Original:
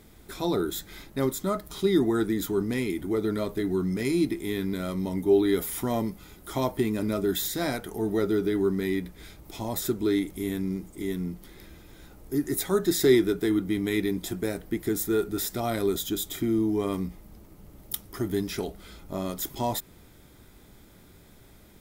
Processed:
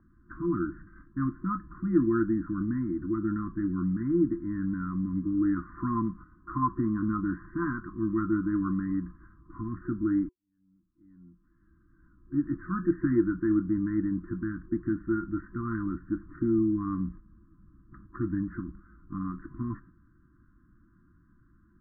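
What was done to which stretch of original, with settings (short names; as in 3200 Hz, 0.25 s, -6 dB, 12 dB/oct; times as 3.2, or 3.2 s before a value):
5.56–9.61 band shelf 710 Hz +8.5 dB
10.29–12.44 fade in quadratic
whole clip: gate -42 dBFS, range -7 dB; FFT band-reject 360–1000 Hz; steep low-pass 1700 Hz 96 dB/oct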